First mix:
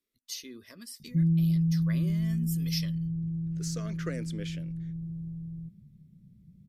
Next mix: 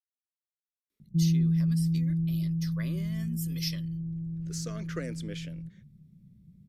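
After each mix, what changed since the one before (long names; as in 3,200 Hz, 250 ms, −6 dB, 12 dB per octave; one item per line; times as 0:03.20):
speech: entry +0.90 s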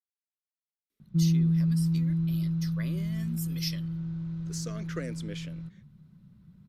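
background: remove Gaussian smoothing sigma 17 samples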